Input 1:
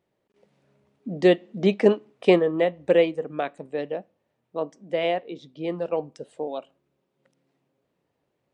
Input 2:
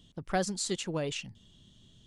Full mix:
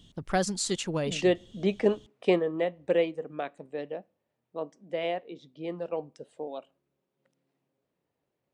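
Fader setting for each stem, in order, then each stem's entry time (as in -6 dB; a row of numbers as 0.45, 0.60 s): -6.5, +3.0 dB; 0.00, 0.00 s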